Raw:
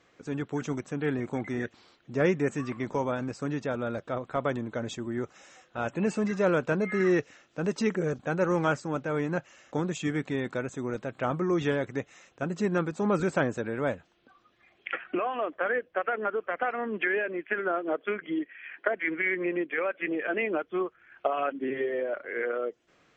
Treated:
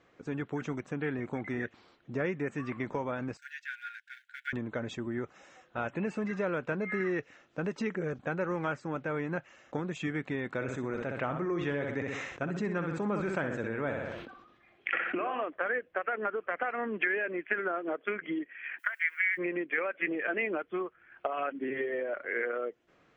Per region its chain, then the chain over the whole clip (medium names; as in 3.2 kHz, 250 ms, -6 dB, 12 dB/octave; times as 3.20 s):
3.37–4.53 s: companding laws mixed up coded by A + brick-wall FIR high-pass 1.4 kHz
10.55–15.44 s: feedback delay 63 ms, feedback 35%, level -8 dB + decay stretcher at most 56 dB/s
18.78–19.37 s: high-pass 1.3 kHz 24 dB/octave + added noise violet -61 dBFS
whole clip: treble shelf 3.5 kHz -11 dB; compression 3:1, threshold -32 dBFS; dynamic bell 2.1 kHz, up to +7 dB, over -53 dBFS, Q 1